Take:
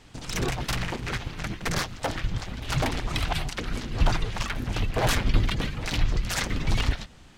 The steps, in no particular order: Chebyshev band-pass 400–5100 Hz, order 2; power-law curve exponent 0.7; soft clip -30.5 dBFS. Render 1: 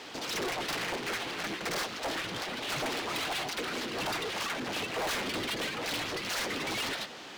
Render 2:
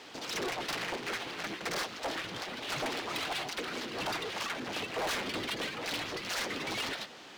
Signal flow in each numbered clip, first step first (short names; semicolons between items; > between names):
Chebyshev band-pass > power-law curve > soft clip; Chebyshev band-pass > soft clip > power-law curve